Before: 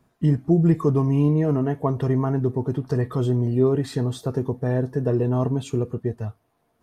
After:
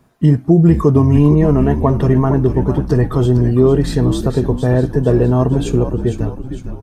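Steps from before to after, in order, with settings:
echo with shifted repeats 456 ms, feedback 49%, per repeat −76 Hz, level −9 dB
boost into a limiter +9.5 dB
level −1 dB

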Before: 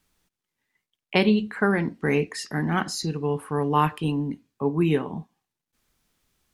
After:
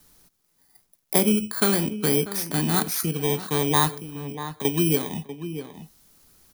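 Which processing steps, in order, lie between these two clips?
samples in bit-reversed order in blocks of 16 samples
high-shelf EQ 4,100 Hz +5 dB
0:03.95–0:04.65: downward compressor 16 to 1, threshold −36 dBFS, peak gain reduction 16 dB
slap from a distant wall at 110 metres, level −15 dB
multiband upward and downward compressor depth 40%

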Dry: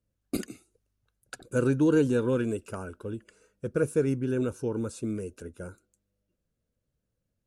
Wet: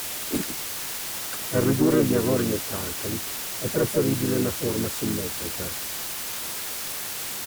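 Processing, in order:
bit-depth reduction 6 bits, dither triangular
harmonic generator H 4 −31 dB, 5 −22 dB, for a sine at −12 dBFS
pitch-shifted copies added −4 semitones −5 dB, +4 semitones −8 dB

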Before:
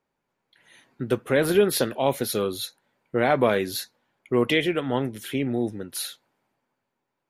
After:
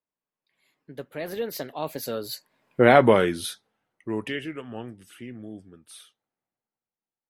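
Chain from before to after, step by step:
source passing by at 0:02.87, 40 m/s, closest 8.7 metres
level +6.5 dB

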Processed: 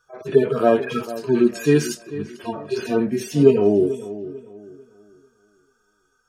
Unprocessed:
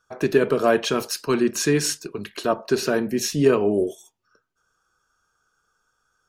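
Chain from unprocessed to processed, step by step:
harmonic-percussive split with one part muted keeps harmonic
on a send: feedback echo with a low-pass in the loop 444 ms, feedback 32%, low-pass 2,800 Hz, level −14.5 dB
on the sum: level +4.5 dB

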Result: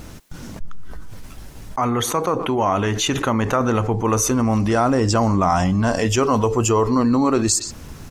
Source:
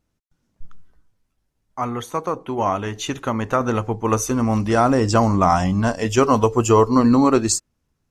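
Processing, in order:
far-end echo of a speakerphone 120 ms, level −25 dB
envelope flattener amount 70%
level −4.5 dB

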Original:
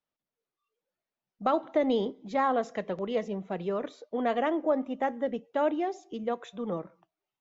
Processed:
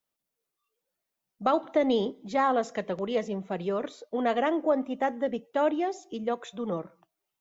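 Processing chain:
high-shelf EQ 5,900 Hz +9.5 dB
level +1.5 dB

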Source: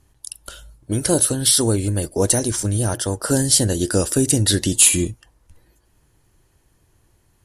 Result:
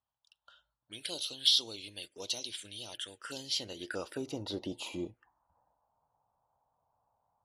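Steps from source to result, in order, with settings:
low-pass that shuts in the quiet parts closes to 1,100 Hz, open at −17.5 dBFS
phaser swept by the level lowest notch 350 Hz, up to 1,700 Hz, full sweep at −15.5 dBFS
band-pass filter sweep 3,300 Hz → 830 Hz, 0:03.19–0:04.65

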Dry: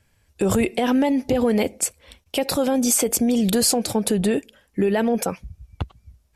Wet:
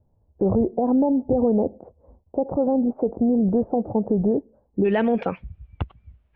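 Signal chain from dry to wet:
Butterworth low-pass 880 Hz 36 dB per octave, from 0:04.84 3,100 Hz

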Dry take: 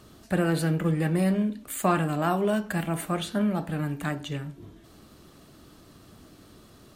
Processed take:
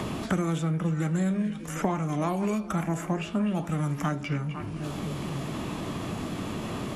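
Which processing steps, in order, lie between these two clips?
echo through a band-pass that steps 250 ms, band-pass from 3,000 Hz, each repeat −1.4 octaves, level −11.5 dB
formants moved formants −4 semitones
multiband upward and downward compressor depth 100%
level −1.5 dB

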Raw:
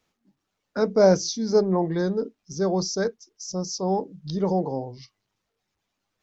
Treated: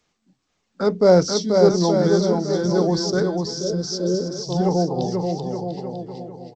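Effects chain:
bouncing-ball delay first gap 460 ms, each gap 0.8×, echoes 5
healed spectral selection 0:03.45–0:04.17, 690–2,900 Hz before
speed change −5%
level +3 dB
G.722 64 kbit/s 16,000 Hz

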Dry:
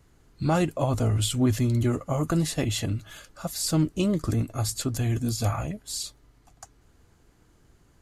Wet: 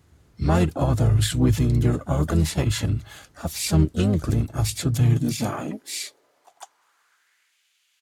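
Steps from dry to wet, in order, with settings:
pitch-shifted copies added −12 semitones −5 dB, +4 semitones −8 dB
high-pass filter sweep 75 Hz → 2,700 Hz, 0:04.65–0:07.66

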